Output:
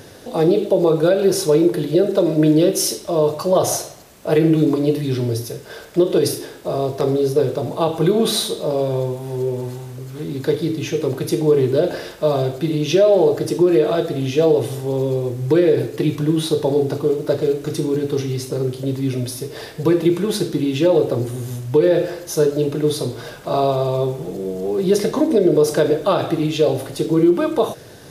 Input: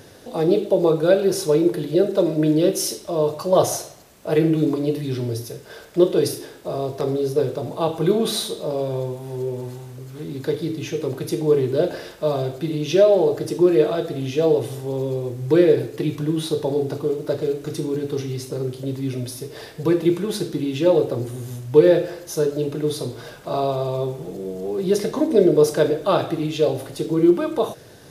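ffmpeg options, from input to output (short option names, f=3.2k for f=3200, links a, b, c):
-af "alimiter=limit=-10.5dB:level=0:latency=1:release=93,volume=4.5dB"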